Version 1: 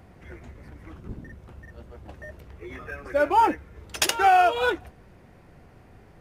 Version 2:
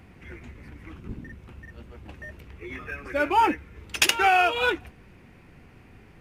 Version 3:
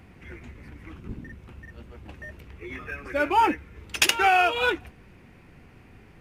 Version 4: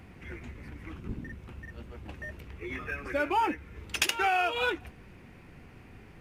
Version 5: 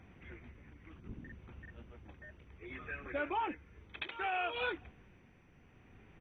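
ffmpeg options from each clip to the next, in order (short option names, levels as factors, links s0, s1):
-af "equalizer=f=250:t=o:w=0.67:g=3,equalizer=f=630:t=o:w=0.67:g=-6,equalizer=f=2500:t=o:w=0.67:g=8"
-af anull
-af "acompressor=threshold=0.0355:ratio=2"
-af "tremolo=f=0.64:d=0.44,aresample=8000,aresample=44100,volume=0.422" -ar 24000 -c:a mp2 -b:a 32k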